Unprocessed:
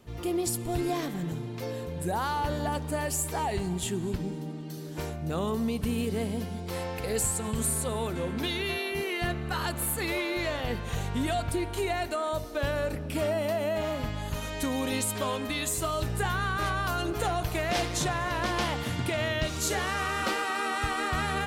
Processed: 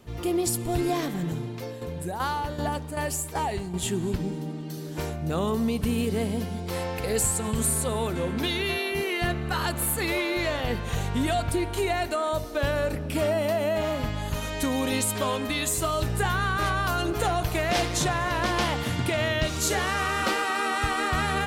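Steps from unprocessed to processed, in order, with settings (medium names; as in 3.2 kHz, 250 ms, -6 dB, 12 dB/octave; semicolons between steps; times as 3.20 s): 1.43–3.84 s: tremolo saw down 2.6 Hz, depth 65%; trim +3.5 dB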